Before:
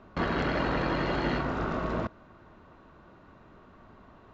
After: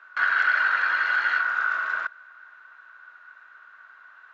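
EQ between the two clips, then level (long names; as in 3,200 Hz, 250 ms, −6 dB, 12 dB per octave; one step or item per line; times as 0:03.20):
high-pass with resonance 1,500 Hz, resonance Q 9.3
0.0 dB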